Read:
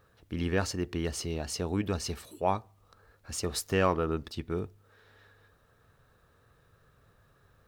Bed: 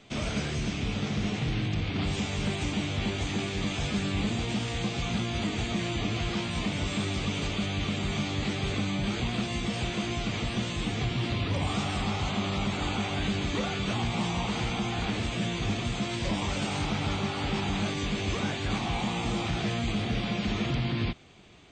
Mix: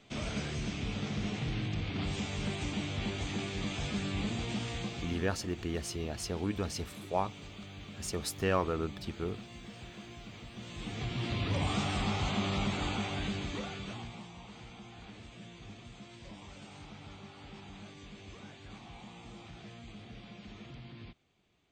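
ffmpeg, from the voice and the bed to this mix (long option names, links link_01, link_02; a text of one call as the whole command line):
ffmpeg -i stem1.wav -i stem2.wav -filter_complex "[0:a]adelay=4700,volume=-3.5dB[link_01];[1:a]volume=9dB,afade=type=out:start_time=4.69:duration=0.64:silence=0.266073,afade=type=in:start_time=10.55:duration=1.04:silence=0.188365,afade=type=out:start_time=12.59:duration=1.68:silence=0.141254[link_02];[link_01][link_02]amix=inputs=2:normalize=0" out.wav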